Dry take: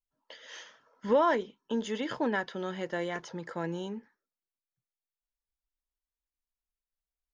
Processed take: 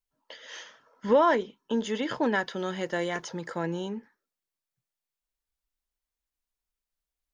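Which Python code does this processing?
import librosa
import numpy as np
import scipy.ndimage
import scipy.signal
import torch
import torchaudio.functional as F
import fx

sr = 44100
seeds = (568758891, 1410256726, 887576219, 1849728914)

y = fx.high_shelf(x, sr, hz=5800.0, db=9.0, at=(2.23, 3.58))
y = F.gain(torch.from_numpy(y), 3.5).numpy()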